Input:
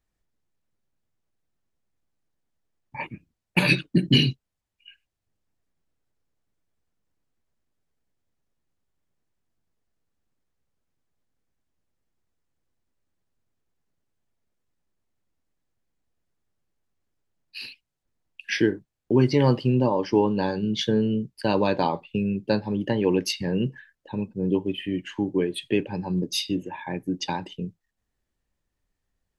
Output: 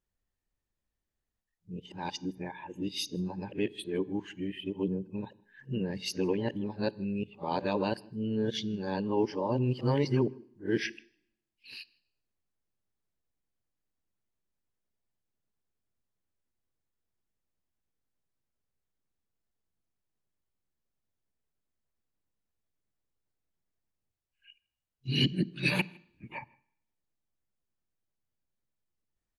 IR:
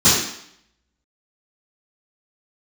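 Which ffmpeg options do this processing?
-filter_complex "[0:a]areverse,asplit=2[link_01][link_02];[link_02]adelay=157.4,volume=-28dB,highshelf=frequency=4000:gain=-3.54[link_03];[link_01][link_03]amix=inputs=2:normalize=0,asplit=2[link_04][link_05];[1:a]atrim=start_sample=2205,lowpass=6800[link_06];[link_05][link_06]afir=irnorm=-1:irlink=0,volume=-43.5dB[link_07];[link_04][link_07]amix=inputs=2:normalize=0,volume=-8dB"

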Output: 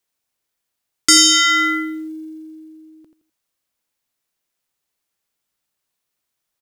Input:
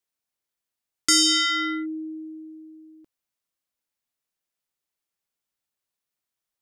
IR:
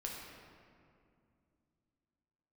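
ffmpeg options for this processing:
-af "aecho=1:1:84|168|252:0.355|0.106|0.0319,acrusher=bits=8:mode=log:mix=0:aa=0.000001,volume=7.5dB"

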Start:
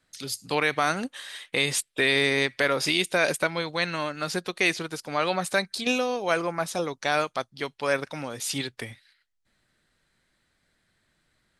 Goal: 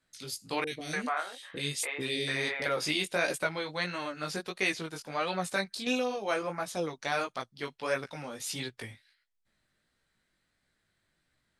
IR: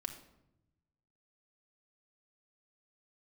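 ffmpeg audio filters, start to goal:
-filter_complex "[0:a]flanger=delay=15.5:depth=5.2:speed=1.5,asettb=1/sr,asplit=3[link_01][link_02][link_03];[link_01]atrim=end=0.644[link_04];[link_02]atrim=start=0.64:end=2.66,asetpts=PTS-STARTPTS,afade=type=in:duration=0.004:curve=qsin,afade=type=out:start_time=2.016:duration=0.004:curve=qsin,acrossover=split=490|2500[link_05][link_06][link_07];[link_07]adelay=30[link_08];[link_06]adelay=290[link_09];[link_05][link_09][link_08]amix=inputs=3:normalize=0,atrim=end_sample=89082[link_10];[link_03]atrim=start=2.656[link_11];[link_04][link_10]acrossfade=duration=0.004:curve1=hsin:curve2=qsin[link_12];[link_12][link_11]acrossfade=duration=0.004:curve1=qsin:curve2=hsin,volume=-3dB"

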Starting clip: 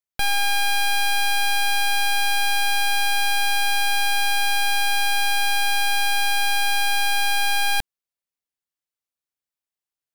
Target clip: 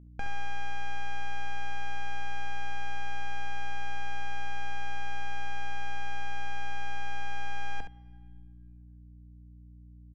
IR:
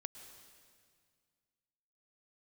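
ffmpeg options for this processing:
-filter_complex "[0:a]lowpass=frequency=3100:width=0.5412,lowpass=frequency=3100:width=1.3066,aecho=1:1:4.2:0.31,alimiter=level_in=2dB:limit=-24dB:level=0:latency=1,volume=-2dB,acrusher=bits=5:mode=log:mix=0:aa=0.000001,asoftclip=type=hard:threshold=-27dB,adynamicsmooth=sensitivity=2.5:basefreq=560,aeval=exprs='val(0)+0.00282*(sin(2*PI*60*n/s)+sin(2*PI*2*60*n/s)/2+sin(2*PI*3*60*n/s)/3+sin(2*PI*4*60*n/s)/4+sin(2*PI*5*60*n/s)/5)':channel_layout=same,aecho=1:1:44|69:0.224|0.355,asplit=2[link_01][link_02];[1:a]atrim=start_sample=2205,lowpass=2900[link_03];[link_02][link_03]afir=irnorm=-1:irlink=0,volume=-8dB[link_04];[link_01][link_04]amix=inputs=2:normalize=0"

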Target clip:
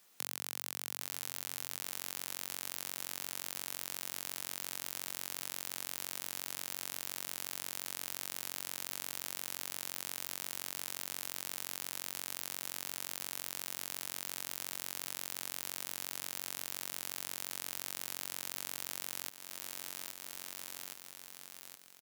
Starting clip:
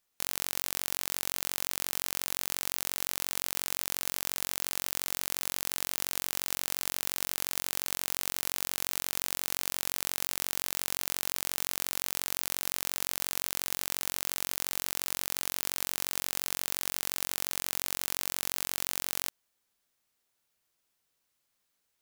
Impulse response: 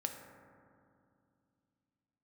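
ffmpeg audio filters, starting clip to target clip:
-af "highpass=frequency=120:width=0.5412,highpass=frequency=120:width=1.3066,aecho=1:1:819|1638|2457|3276:0.158|0.0666|0.028|0.0117,acompressor=threshold=-48dB:ratio=6,volume=13dB"

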